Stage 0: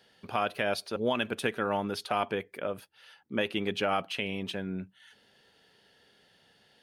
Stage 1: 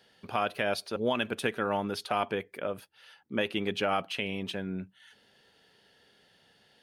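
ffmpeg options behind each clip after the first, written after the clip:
-af anull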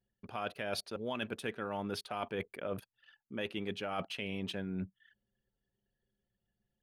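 -af "anlmdn=0.00631,lowshelf=f=180:g=4,areverse,acompressor=threshold=-37dB:ratio=8,areverse,volume=2.5dB"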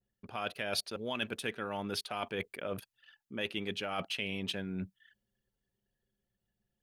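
-af "adynamicequalizer=threshold=0.002:dfrequency=1800:dqfactor=0.7:tfrequency=1800:tqfactor=0.7:attack=5:release=100:ratio=0.375:range=3:mode=boostabove:tftype=highshelf"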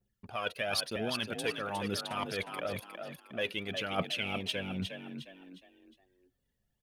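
-filter_complex "[0:a]aphaser=in_gain=1:out_gain=1:delay=2.2:decay=0.55:speed=1:type=triangular,asplit=5[a][b][c][d][e];[b]adelay=359,afreqshift=44,volume=-7dB[f];[c]adelay=718,afreqshift=88,volume=-15.6dB[g];[d]adelay=1077,afreqshift=132,volume=-24.3dB[h];[e]adelay=1436,afreqshift=176,volume=-32.9dB[i];[a][f][g][h][i]amix=inputs=5:normalize=0"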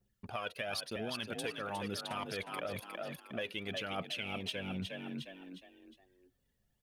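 -af "acompressor=threshold=-38dB:ratio=5,volume=2dB"

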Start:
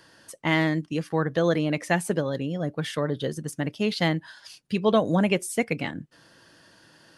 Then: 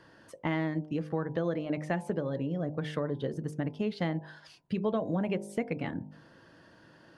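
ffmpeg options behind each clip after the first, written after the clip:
-af "lowpass=f=1.1k:p=1,bandreject=f=50.76:t=h:w=4,bandreject=f=101.52:t=h:w=4,bandreject=f=152.28:t=h:w=4,bandreject=f=203.04:t=h:w=4,bandreject=f=253.8:t=h:w=4,bandreject=f=304.56:t=h:w=4,bandreject=f=355.32:t=h:w=4,bandreject=f=406.08:t=h:w=4,bandreject=f=456.84:t=h:w=4,bandreject=f=507.6:t=h:w=4,bandreject=f=558.36:t=h:w=4,bandreject=f=609.12:t=h:w=4,bandreject=f=659.88:t=h:w=4,bandreject=f=710.64:t=h:w=4,bandreject=f=761.4:t=h:w=4,bandreject=f=812.16:t=h:w=4,bandreject=f=862.92:t=h:w=4,bandreject=f=913.68:t=h:w=4,bandreject=f=964.44:t=h:w=4,bandreject=f=1.0152k:t=h:w=4,acompressor=threshold=-32dB:ratio=3,volume=2dB"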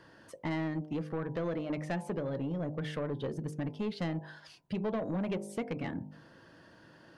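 -af "asoftclip=type=tanh:threshold=-28dB"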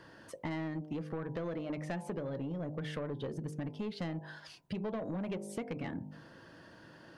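-af "acompressor=threshold=-39dB:ratio=3,volume=2dB"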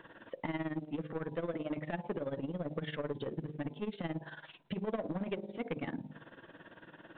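-af "equalizer=f=77:w=1:g=-10.5,tremolo=f=18:d=0.81,volume=5dB" -ar 8000 -c:a pcm_mulaw

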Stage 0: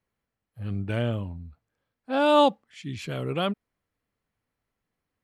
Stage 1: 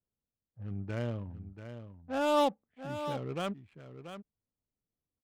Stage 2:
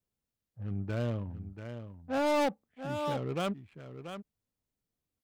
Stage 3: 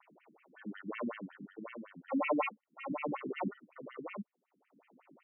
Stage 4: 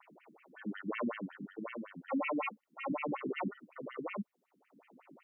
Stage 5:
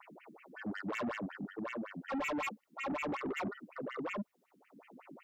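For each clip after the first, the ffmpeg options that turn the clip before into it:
-af "lowpass=5k,adynamicsmooth=sensitivity=5.5:basefreq=700,aecho=1:1:685:0.299,volume=-8dB"
-af "asoftclip=type=hard:threshold=-28.5dB,volume=3dB"
-af "acompressor=mode=upward:threshold=-33dB:ratio=2.5,acrusher=samples=27:mix=1:aa=0.000001,afftfilt=real='re*between(b*sr/1024,220*pow(2300/220,0.5+0.5*sin(2*PI*5.4*pts/sr))/1.41,220*pow(2300/220,0.5+0.5*sin(2*PI*5.4*pts/sr))*1.41)':imag='im*between(b*sr/1024,220*pow(2300/220,0.5+0.5*sin(2*PI*5.4*pts/sr))/1.41,220*pow(2300/220,0.5+0.5*sin(2*PI*5.4*pts/sr))*1.41)':win_size=1024:overlap=0.75,volume=3.5dB"
-af "alimiter=level_in=6.5dB:limit=-24dB:level=0:latency=1:release=134,volume=-6.5dB,volume=3.5dB"
-af "asoftclip=type=tanh:threshold=-38.5dB,volume=5dB"

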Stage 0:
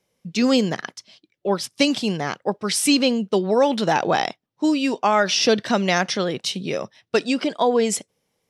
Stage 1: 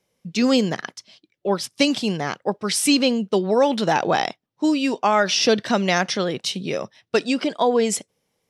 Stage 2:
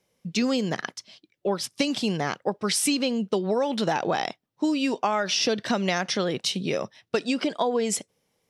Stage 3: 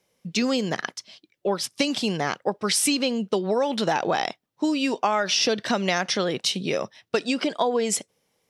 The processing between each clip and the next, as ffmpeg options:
-af anull
-af "acompressor=threshold=-21dB:ratio=6"
-af "lowshelf=f=270:g=-4.5,volume=2.5dB"

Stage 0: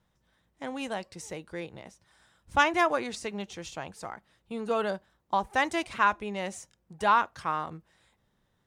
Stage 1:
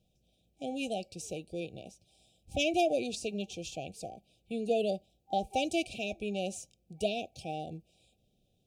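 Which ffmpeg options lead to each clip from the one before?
-af "afftfilt=real='re*(1-between(b*sr/4096,790,2300))':imag='im*(1-between(b*sr/4096,790,2300))':win_size=4096:overlap=0.75"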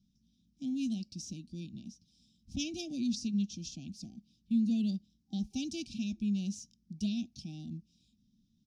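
-af "firequalizer=gain_entry='entry(130,0);entry(230,13);entry(460,-29);entry(3400,-4);entry(5500,7);entry(8100,-11)':delay=0.05:min_phase=1,volume=-2dB"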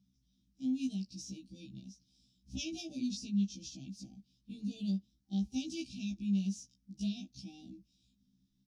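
-af "afftfilt=real='re*1.73*eq(mod(b,3),0)':imag='im*1.73*eq(mod(b,3),0)':win_size=2048:overlap=0.75"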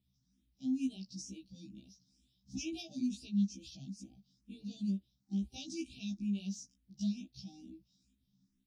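-filter_complex "[0:a]asplit=2[a][b];[b]afreqshift=2.2[c];[a][c]amix=inputs=2:normalize=1,volume=1.5dB"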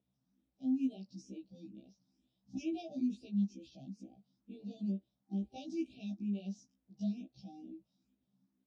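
-af "bandpass=f=590:t=q:w=1.6:csg=0,volume=11dB"

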